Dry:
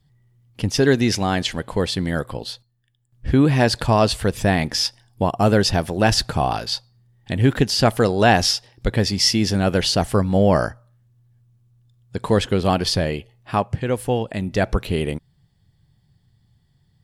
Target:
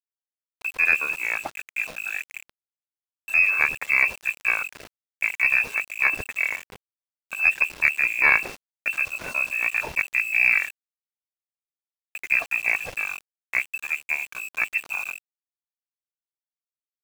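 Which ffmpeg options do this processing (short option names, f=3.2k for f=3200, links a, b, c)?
-af "bandreject=f=60:t=h:w=6,bandreject=f=120:t=h:w=6,bandreject=f=180:t=h:w=6,bandreject=f=240:t=h:w=6,bandreject=f=300:t=h:w=6,bandreject=f=360:t=h:w=6,bandreject=f=420:t=h:w=6,bandreject=f=480:t=h:w=6,bandreject=f=540:t=h:w=6,aeval=exprs='0.794*(cos(1*acos(clip(val(0)/0.794,-1,1)))-cos(1*PI/2))+0.0355*(cos(3*acos(clip(val(0)/0.794,-1,1)))-cos(3*PI/2))+0.0891*(cos(4*acos(clip(val(0)/0.794,-1,1)))-cos(4*PI/2))+0.0158*(cos(6*acos(clip(val(0)/0.794,-1,1)))-cos(6*PI/2))+0.0501*(cos(7*acos(clip(val(0)/0.794,-1,1)))-cos(7*PI/2))':c=same,asetrate=26990,aresample=44100,atempo=1.63392,lowpass=f=2.3k:t=q:w=0.5098,lowpass=f=2.3k:t=q:w=0.6013,lowpass=f=2.3k:t=q:w=0.9,lowpass=f=2.3k:t=q:w=2.563,afreqshift=-2700,aeval=exprs='val(0)*gte(abs(val(0)),0.0211)':c=same,aeval=exprs='1*(cos(1*acos(clip(val(0)/1,-1,1)))-cos(1*PI/2))+0.0562*(cos(2*acos(clip(val(0)/1,-1,1)))-cos(2*PI/2))':c=same,volume=-1.5dB"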